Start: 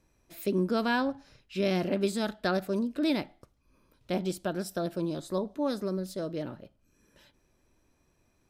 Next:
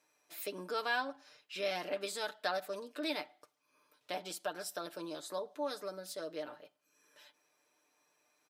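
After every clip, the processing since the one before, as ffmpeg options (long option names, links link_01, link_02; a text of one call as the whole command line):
ffmpeg -i in.wav -filter_complex "[0:a]highpass=620,aecho=1:1:6.7:0.63,asplit=2[link_01][link_02];[link_02]acompressor=threshold=-41dB:ratio=6,volume=-1dB[link_03];[link_01][link_03]amix=inputs=2:normalize=0,volume=-6dB" out.wav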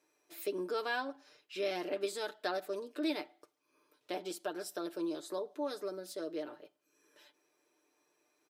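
ffmpeg -i in.wav -af "equalizer=frequency=360:width_type=o:width=0.58:gain=13,volume=-2.5dB" out.wav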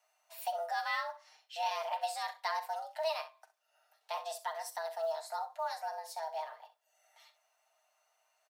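ffmpeg -i in.wav -af "aecho=1:1:42|65:0.188|0.188,afreqshift=320,acrusher=bits=9:mode=log:mix=0:aa=0.000001" out.wav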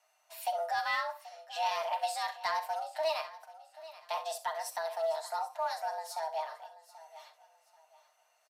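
ffmpeg -i in.wav -af "aresample=32000,aresample=44100,asoftclip=type=tanh:threshold=-24.5dB,aecho=1:1:783|1566|2349:0.141|0.0396|0.0111,volume=3.5dB" out.wav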